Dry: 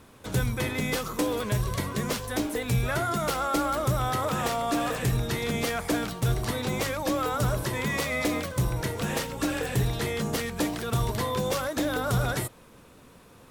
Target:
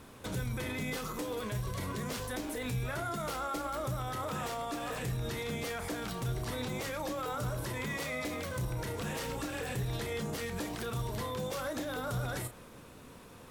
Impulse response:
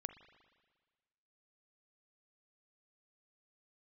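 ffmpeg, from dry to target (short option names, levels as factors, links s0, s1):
-filter_complex "[0:a]alimiter=level_in=1.78:limit=0.0631:level=0:latency=1:release=78,volume=0.562,asplit=2[s0][s1];[1:a]atrim=start_sample=2205,adelay=32[s2];[s1][s2]afir=irnorm=-1:irlink=0,volume=0.501[s3];[s0][s3]amix=inputs=2:normalize=0"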